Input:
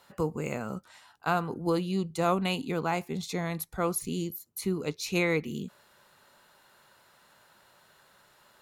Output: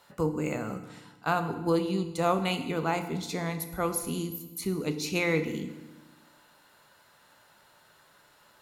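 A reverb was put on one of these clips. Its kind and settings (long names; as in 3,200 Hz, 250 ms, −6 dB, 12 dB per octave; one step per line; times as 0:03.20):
feedback delay network reverb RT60 1.1 s, low-frequency decay 1.4×, high-frequency decay 0.95×, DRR 7.5 dB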